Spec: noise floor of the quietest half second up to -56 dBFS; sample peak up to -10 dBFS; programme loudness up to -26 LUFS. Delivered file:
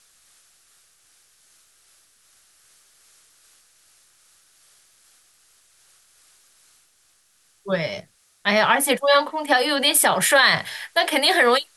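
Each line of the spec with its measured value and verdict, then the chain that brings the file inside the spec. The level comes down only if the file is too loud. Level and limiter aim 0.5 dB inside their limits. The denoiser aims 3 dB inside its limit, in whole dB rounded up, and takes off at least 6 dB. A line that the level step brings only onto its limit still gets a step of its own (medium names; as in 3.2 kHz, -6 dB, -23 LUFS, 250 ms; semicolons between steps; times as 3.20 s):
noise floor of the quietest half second -61 dBFS: pass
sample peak -6.0 dBFS: fail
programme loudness -18.5 LUFS: fail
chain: trim -8 dB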